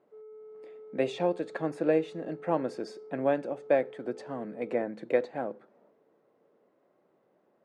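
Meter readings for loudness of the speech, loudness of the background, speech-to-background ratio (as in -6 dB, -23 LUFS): -31.5 LUFS, -48.5 LUFS, 17.0 dB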